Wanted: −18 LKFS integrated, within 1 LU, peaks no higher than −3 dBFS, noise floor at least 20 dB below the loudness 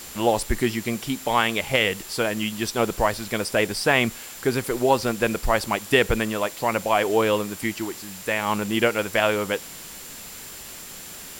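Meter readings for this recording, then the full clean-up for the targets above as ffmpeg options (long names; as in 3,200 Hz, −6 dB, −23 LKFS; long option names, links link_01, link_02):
interfering tone 7,300 Hz; level of the tone −45 dBFS; background noise floor −40 dBFS; target noise floor −44 dBFS; integrated loudness −23.5 LKFS; sample peak −5.5 dBFS; target loudness −18.0 LKFS
→ -af "bandreject=frequency=7300:width=30"
-af "afftdn=noise_reduction=6:noise_floor=-40"
-af "volume=5.5dB,alimiter=limit=-3dB:level=0:latency=1"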